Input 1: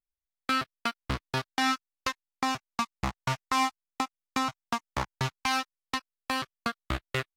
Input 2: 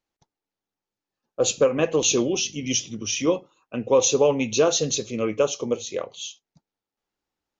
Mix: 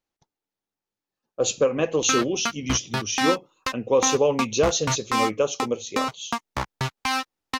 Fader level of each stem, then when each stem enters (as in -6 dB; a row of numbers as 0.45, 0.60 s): +3.0, -1.5 dB; 1.60, 0.00 s